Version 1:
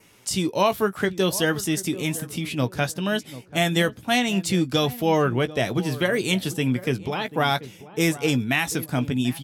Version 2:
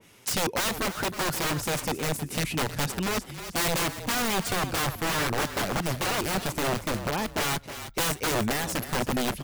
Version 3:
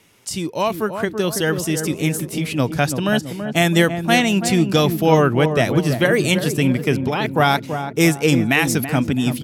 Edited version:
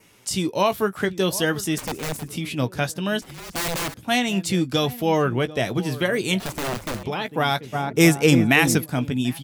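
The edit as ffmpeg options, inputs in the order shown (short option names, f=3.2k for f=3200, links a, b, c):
-filter_complex "[1:a]asplit=3[a][b][c];[0:a]asplit=5[d][e][f][g][h];[d]atrim=end=1.782[i];[a]atrim=start=1.778:end=2.282[j];[e]atrim=start=2.278:end=3.222[k];[b]atrim=start=3.218:end=3.942[l];[f]atrim=start=3.938:end=6.402[m];[c]atrim=start=6.398:end=7.032[n];[g]atrim=start=7.028:end=7.76[o];[2:a]atrim=start=7.72:end=8.81[p];[h]atrim=start=8.77[q];[i][j]acrossfade=d=0.004:c1=hsin:c2=hsin[r];[r][k]acrossfade=d=0.004:c1=hsin:c2=hsin[s];[s][l]acrossfade=d=0.004:c1=hsin:c2=hsin[t];[t][m]acrossfade=d=0.004:c1=hsin:c2=hsin[u];[u][n]acrossfade=d=0.004:c1=hsin:c2=hsin[v];[v][o]acrossfade=d=0.004:c1=hsin:c2=hsin[w];[w][p]acrossfade=d=0.04:c1=tri:c2=tri[x];[x][q]acrossfade=d=0.04:c1=tri:c2=tri"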